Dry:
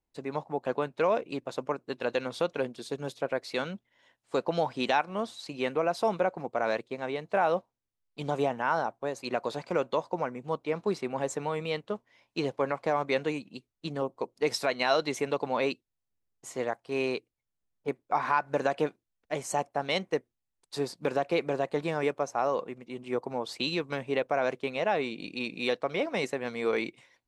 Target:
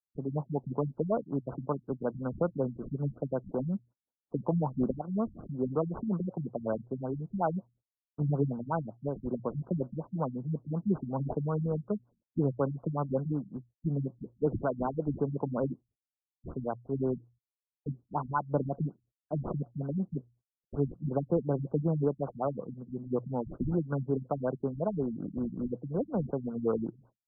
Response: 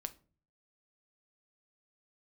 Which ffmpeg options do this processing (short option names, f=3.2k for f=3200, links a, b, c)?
-filter_complex "[0:a]highpass=57,aemphasis=mode=production:type=cd,bandreject=f=60:t=h:w=6,bandreject=f=120:t=h:w=6,agate=range=-34dB:threshold=-57dB:ratio=16:detection=peak,bass=f=250:g=15,treble=f=4k:g=1,acrossover=split=250|1500|3400[a][b][c][d];[d]acrusher=samples=35:mix=1:aa=0.000001:lfo=1:lforange=35:lforate=0.44[e];[a][b][c][e]amix=inputs=4:normalize=0,afftfilt=real='re*lt(b*sr/1024,220*pow(1600/220,0.5+0.5*sin(2*PI*5.4*pts/sr)))':imag='im*lt(b*sr/1024,220*pow(1600/220,0.5+0.5*sin(2*PI*5.4*pts/sr)))':win_size=1024:overlap=0.75,volume=-2.5dB"